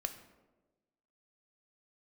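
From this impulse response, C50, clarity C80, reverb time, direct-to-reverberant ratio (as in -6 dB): 11.0 dB, 13.0 dB, 1.2 s, 7.5 dB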